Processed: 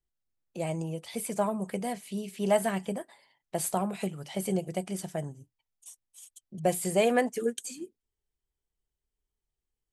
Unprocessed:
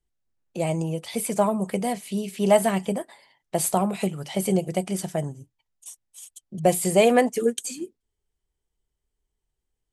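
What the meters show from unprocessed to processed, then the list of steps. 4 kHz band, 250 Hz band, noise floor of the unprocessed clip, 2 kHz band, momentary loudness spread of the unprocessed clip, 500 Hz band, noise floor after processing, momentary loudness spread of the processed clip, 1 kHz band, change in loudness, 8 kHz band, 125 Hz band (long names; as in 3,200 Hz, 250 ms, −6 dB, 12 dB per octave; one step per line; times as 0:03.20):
−7.0 dB, −7.0 dB, −82 dBFS, −5.0 dB, 20 LU, −7.0 dB, below −85 dBFS, 20 LU, −7.0 dB, −7.0 dB, −7.0 dB, −7.0 dB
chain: dynamic equaliser 1,600 Hz, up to +5 dB, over −48 dBFS, Q 3.9
level −7 dB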